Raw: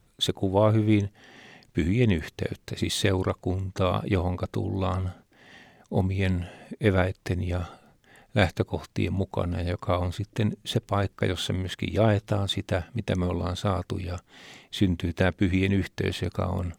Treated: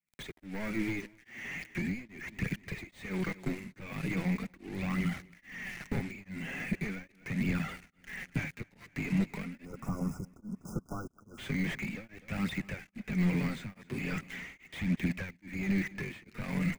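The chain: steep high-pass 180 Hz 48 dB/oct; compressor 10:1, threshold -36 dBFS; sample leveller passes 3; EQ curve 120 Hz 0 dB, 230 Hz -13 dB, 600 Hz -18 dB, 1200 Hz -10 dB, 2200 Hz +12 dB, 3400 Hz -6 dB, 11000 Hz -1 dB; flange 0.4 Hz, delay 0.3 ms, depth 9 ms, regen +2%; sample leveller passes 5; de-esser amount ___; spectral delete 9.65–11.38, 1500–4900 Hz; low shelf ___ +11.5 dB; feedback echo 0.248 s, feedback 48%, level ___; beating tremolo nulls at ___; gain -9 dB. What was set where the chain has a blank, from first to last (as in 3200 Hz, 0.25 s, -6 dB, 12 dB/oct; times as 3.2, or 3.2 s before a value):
80%, 280 Hz, -19 dB, 1.2 Hz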